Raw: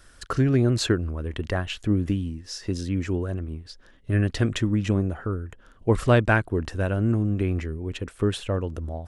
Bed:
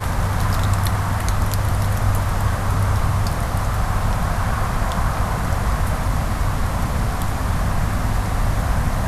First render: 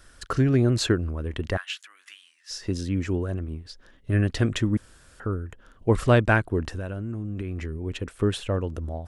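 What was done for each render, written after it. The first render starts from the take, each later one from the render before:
0:01.57–0:02.51: high-pass filter 1,300 Hz 24 dB per octave
0:04.77–0:05.20: fill with room tone
0:06.72–0:07.75: downward compressor 10 to 1, threshold −27 dBFS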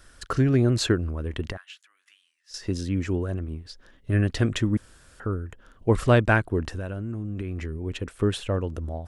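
0:01.52–0:02.54: clip gain −11.5 dB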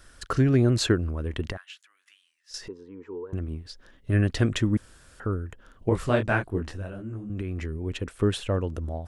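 0:02.68–0:03.33: pair of resonant band-passes 650 Hz, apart 1.1 octaves
0:05.89–0:07.30: micro pitch shift up and down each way 56 cents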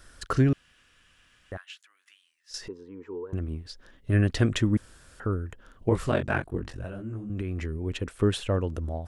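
0:00.53–0:01.52: fill with room tone
0:06.10–0:06.84: ring modulation 23 Hz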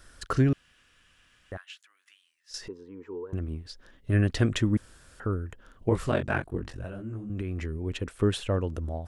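level −1 dB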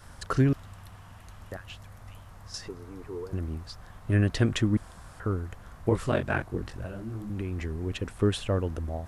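mix in bed −28 dB

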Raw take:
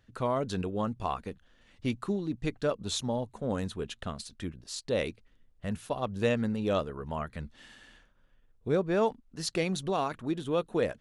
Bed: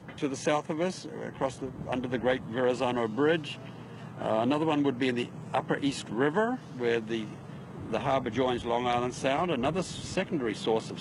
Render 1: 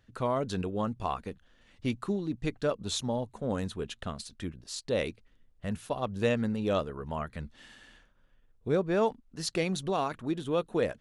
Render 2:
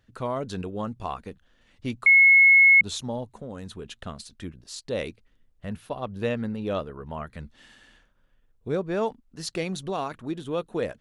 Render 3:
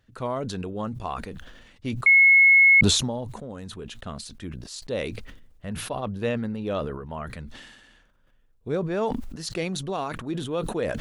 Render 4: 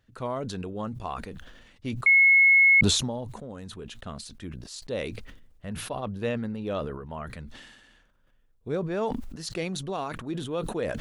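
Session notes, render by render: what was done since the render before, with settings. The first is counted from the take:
no processing that can be heard
0:02.06–0:02.81: beep over 2,180 Hz −11.5 dBFS; 0:03.39–0:03.90: downward compressor 4 to 1, threshold −33 dBFS; 0:05.65–0:07.24: parametric band 7,300 Hz −8.5 dB 0.96 octaves
level that may fall only so fast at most 44 dB per second
level −2.5 dB

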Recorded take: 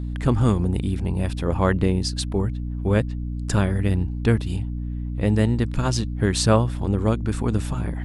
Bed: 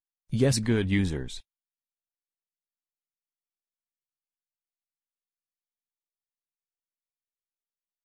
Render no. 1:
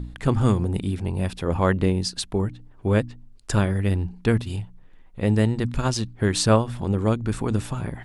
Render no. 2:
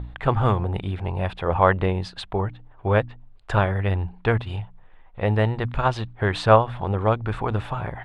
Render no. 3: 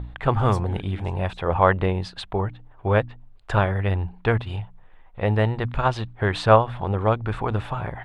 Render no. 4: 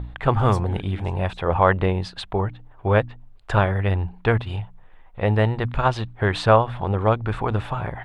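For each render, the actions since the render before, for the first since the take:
hum removal 60 Hz, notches 5
drawn EQ curve 110 Hz 0 dB, 250 Hz −8 dB, 760 Hz +9 dB, 3,600 Hz 0 dB, 5,600 Hz −17 dB, 9,500 Hz −19 dB
mix in bed −16 dB
level +1.5 dB; brickwall limiter −3 dBFS, peak gain reduction 3 dB

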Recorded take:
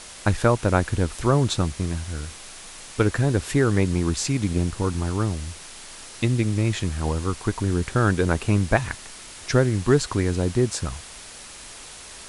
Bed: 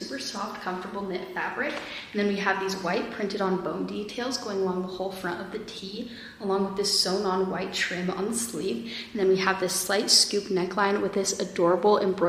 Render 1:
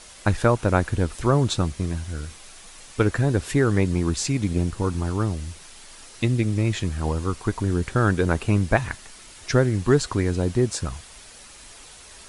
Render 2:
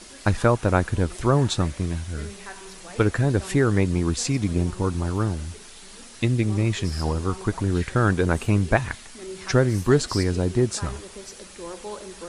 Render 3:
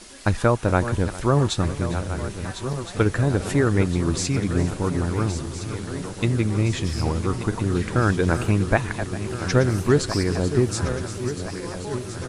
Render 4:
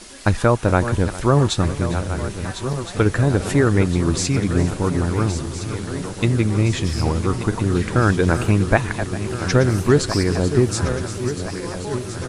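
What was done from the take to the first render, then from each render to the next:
broadband denoise 6 dB, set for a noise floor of −42 dBFS
mix in bed −15 dB
feedback delay that plays each chunk backwards 683 ms, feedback 76%, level −10.5 dB; single-tap delay 403 ms −18 dB
level +3.5 dB; brickwall limiter −3 dBFS, peak gain reduction 2 dB

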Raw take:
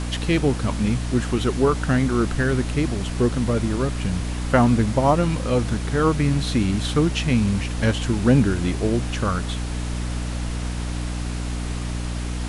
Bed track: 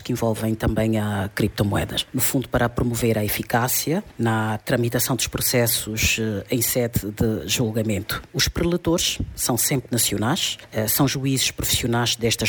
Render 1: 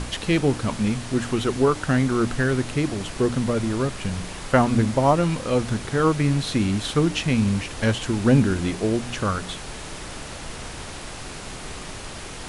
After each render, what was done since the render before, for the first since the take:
hum removal 60 Hz, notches 5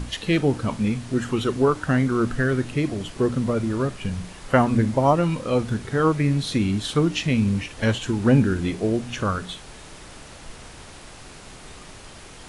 noise reduction from a noise print 7 dB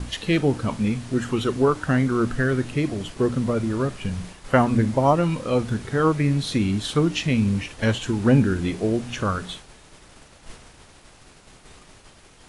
downward expander −35 dBFS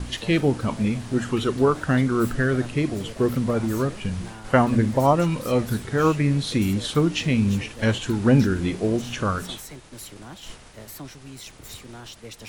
mix in bed track −20 dB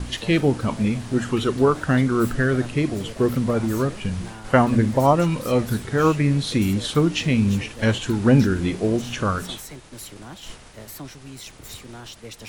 level +1.5 dB

